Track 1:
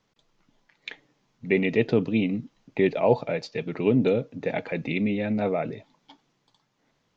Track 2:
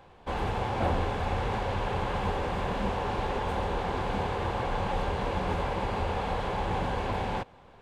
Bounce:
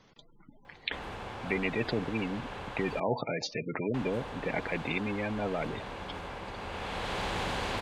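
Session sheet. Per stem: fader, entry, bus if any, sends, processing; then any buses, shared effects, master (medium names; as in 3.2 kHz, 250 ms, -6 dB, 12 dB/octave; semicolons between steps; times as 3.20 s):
-6.0 dB, 0.00 s, no send, spectral gate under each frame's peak -20 dB strong
-8.5 dB, 0.65 s, muted 3.00–3.94 s, no send, auto duck -14 dB, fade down 0.95 s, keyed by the first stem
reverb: none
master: spectrum-flattening compressor 2:1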